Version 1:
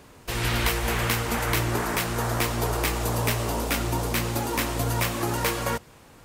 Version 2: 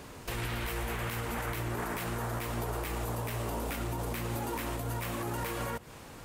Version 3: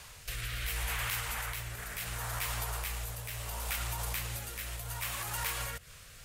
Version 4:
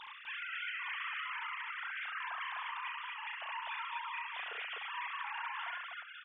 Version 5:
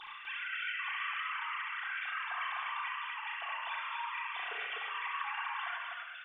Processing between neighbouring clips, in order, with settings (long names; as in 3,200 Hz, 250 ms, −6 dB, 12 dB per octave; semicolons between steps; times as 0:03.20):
dynamic equaliser 5,300 Hz, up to −6 dB, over −45 dBFS, Q 0.97; downward compressor, threshold −31 dBFS, peak gain reduction 11 dB; brickwall limiter −29 dBFS, peak gain reduction 9 dB; level +3 dB
guitar amp tone stack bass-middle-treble 10-0-10; rotating-speaker cabinet horn 0.7 Hz; level +8.5 dB
three sine waves on the formant tracks; downward compressor, threshold −42 dBFS, peak gain reduction 14 dB; on a send: loudspeakers that aren't time-aligned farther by 12 metres −6 dB, 23 metres −4 dB, 86 metres −2 dB
rectangular room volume 3,100 cubic metres, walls furnished, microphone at 3.6 metres